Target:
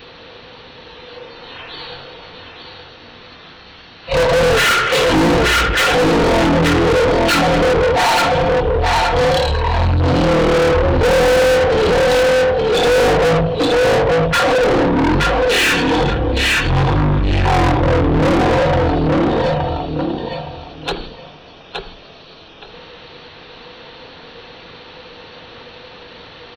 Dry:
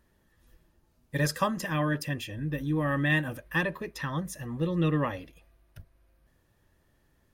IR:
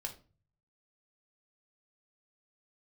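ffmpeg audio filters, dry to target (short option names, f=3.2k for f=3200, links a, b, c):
-filter_complex "[0:a]asplit=2[a][b];[b]aecho=0:1:240|480|720:0.473|0.0994|0.0209[c];[a][c]amix=inputs=2:normalize=0,asetrate=12172,aresample=44100,asplit=2[d][e];[e]adelay=80,lowpass=f=1.6k:p=1,volume=-14.5dB,asplit=2[f][g];[g]adelay=80,lowpass=f=1.6k:p=1,volume=0.33,asplit=2[h][i];[i]adelay=80,lowpass=f=1.6k:p=1,volume=0.33[j];[f][h][j]amix=inputs=3:normalize=0[k];[d][k]amix=inputs=2:normalize=0,adynamicequalizer=threshold=0.00398:dfrequency=560:dqfactor=5:tfrequency=560:tqfactor=5:attack=5:release=100:ratio=0.375:range=3.5:mode=boostabove:tftype=bell,asplit=2[l][m];[m]highpass=f=720:p=1,volume=43dB,asoftclip=type=tanh:threshold=-10dB[n];[l][n]amix=inputs=2:normalize=0,lowpass=f=6.6k:p=1,volume=-6dB,volume=3.5dB"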